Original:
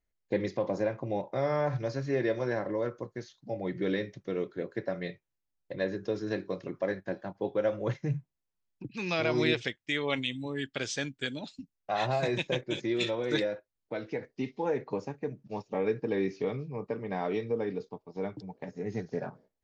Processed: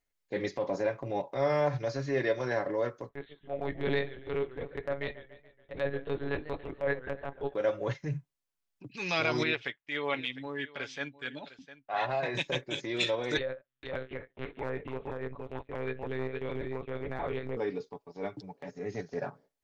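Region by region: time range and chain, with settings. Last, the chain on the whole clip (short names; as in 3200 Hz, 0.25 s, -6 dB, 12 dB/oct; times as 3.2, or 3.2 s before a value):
3.09–7.54 block floating point 7-bit + monotone LPC vocoder at 8 kHz 140 Hz + warbling echo 0.142 s, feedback 51%, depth 146 cents, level -14 dB
9.43–12.35 LPF 2400 Hz + low shelf 430 Hz -7.5 dB + echo 0.704 s -17 dB
13.37–17.57 compressor 2.5:1, threshold -32 dBFS + echo 0.468 s -4 dB + monotone LPC vocoder at 8 kHz 130 Hz
whole clip: transient shaper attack -7 dB, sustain -3 dB; low shelf 420 Hz -7.5 dB; comb 7.1 ms, depth 38%; gain +4 dB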